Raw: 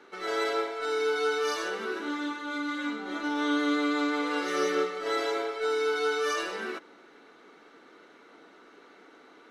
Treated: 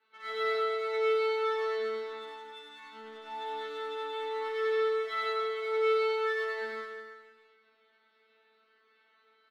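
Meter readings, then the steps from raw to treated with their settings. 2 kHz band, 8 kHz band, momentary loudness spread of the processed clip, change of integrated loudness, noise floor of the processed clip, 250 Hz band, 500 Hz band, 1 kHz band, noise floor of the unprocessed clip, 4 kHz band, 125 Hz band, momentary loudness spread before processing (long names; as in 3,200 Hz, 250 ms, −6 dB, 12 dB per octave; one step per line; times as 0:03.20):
−5.0 dB, below −15 dB, 18 LU, −2.5 dB, −69 dBFS, below −25 dB, −0.5 dB, −2.5 dB, −55 dBFS, −5.5 dB, can't be measured, 6 LU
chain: low-pass filter 3,800 Hz 24 dB per octave
tilt shelving filter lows −8 dB, about 930 Hz
tuned comb filter 220 Hz, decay 0.59 s, harmonics all, mix 100%
hum removal 65.77 Hz, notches 37
in parallel at −5.5 dB: dead-zone distortion −51.5 dBFS
on the sum: reverse bouncing-ball delay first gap 100 ms, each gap 1.15×, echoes 5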